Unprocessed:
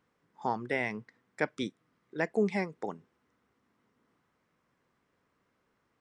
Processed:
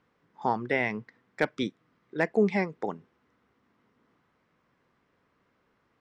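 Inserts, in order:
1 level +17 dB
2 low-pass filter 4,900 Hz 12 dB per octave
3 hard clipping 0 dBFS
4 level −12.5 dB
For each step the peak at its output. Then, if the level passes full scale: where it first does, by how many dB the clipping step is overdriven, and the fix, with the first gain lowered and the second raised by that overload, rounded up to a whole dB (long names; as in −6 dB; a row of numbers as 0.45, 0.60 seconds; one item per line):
+4.5, +4.5, 0.0, −12.5 dBFS
step 1, 4.5 dB
step 1 +12 dB, step 4 −7.5 dB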